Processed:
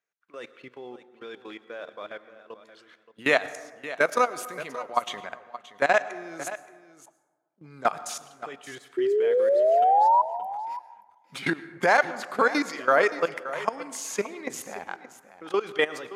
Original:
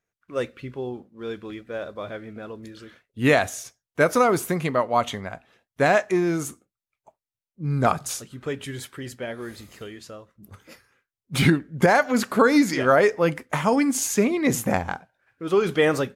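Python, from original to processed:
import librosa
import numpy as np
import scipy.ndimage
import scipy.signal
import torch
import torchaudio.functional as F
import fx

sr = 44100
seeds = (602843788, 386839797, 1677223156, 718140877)

y = fx.highpass(x, sr, hz=110.0, slope=6)
y = fx.high_shelf(y, sr, hz=7900.0, db=-4.0)
y = fx.level_steps(y, sr, step_db=18)
y = fx.spec_paint(y, sr, seeds[0], shape='rise', start_s=8.97, length_s=1.25, low_hz=360.0, high_hz=1000.0, level_db=-19.0)
y = fx.weighting(y, sr, curve='A')
y = y + 10.0 ** (-14.5 / 20.0) * np.pad(y, (int(574 * sr / 1000.0), 0))[:len(y)]
y = fx.rev_plate(y, sr, seeds[1], rt60_s=1.4, hf_ratio=0.4, predelay_ms=90, drr_db=16.0)
y = y * 10.0 ** (1.0 / 20.0)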